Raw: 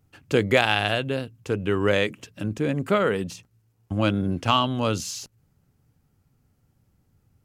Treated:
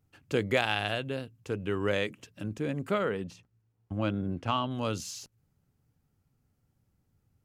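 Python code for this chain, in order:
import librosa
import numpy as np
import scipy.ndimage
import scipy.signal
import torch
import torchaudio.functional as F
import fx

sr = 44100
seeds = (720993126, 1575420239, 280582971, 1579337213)

y = fx.high_shelf(x, sr, hz=fx.line((3.04, 5700.0), (4.7, 3400.0)), db=-11.5, at=(3.04, 4.7), fade=0.02)
y = y * 10.0 ** (-7.5 / 20.0)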